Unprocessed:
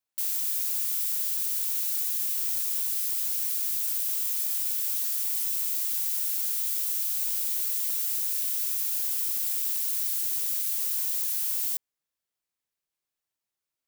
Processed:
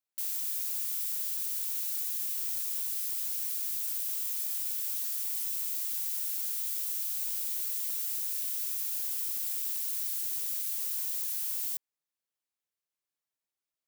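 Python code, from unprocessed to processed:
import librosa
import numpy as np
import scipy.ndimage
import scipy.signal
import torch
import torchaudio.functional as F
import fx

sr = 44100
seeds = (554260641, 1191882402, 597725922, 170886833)

y = fx.highpass(x, sr, hz=110.0, slope=6)
y = y * librosa.db_to_amplitude(-5.0)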